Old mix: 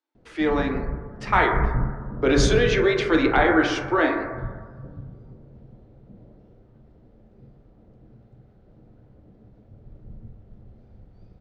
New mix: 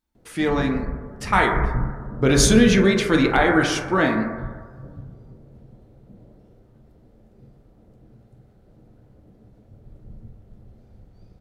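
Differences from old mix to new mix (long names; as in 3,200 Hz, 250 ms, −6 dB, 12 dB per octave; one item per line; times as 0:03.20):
speech: remove Butterworth high-pass 270 Hz 96 dB per octave
master: remove high-frequency loss of the air 140 metres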